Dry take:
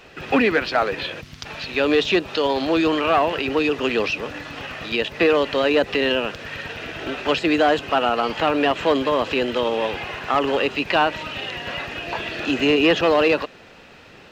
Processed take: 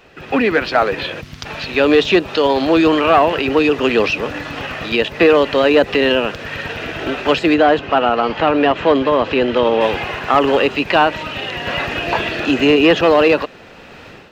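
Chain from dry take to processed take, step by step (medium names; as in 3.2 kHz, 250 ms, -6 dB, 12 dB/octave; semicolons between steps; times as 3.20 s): peaking EQ 6.1 kHz -3.5 dB 2.8 oct; level rider gain up to 11 dB; 7.54–9.81 s: distance through air 120 m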